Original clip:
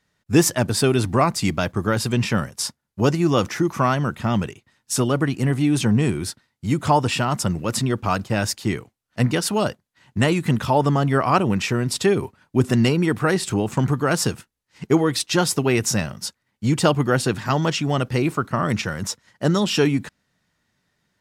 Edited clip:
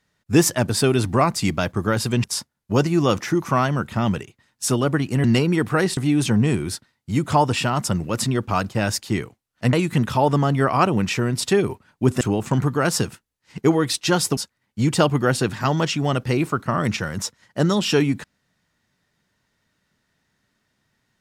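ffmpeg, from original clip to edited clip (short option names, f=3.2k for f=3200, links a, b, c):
-filter_complex "[0:a]asplit=7[a][b][c][d][e][f][g];[a]atrim=end=2.242[h];[b]atrim=start=2.518:end=5.522[i];[c]atrim=start=12.738:end=13.472[j];[d]atrim=start=5.518:end=9.282[k];[e]atrim=start=10.258:end=12.742[l];[f]atrim=start=13.468:end=15.632[m];[g]atrim=start=16.218[n];[h][i]acrossfade=d=0.004:c1=hsin:c2=hsin[o];[o][j]acrossfade=d=0.004:c1=hsin:c2=hsin[p];[p][k]acrossfade=d=0.004:c1=hsin:c2=hsin[q];[q][l]acrossfade=d=0.004:c1=hsin:c2=hsin[r];[r][m]acrossfade=d=0.004:c1=hsin:c2=hsin[s];[s][n]acrossfade=d=0.004:c1=hsin:c2=hsin"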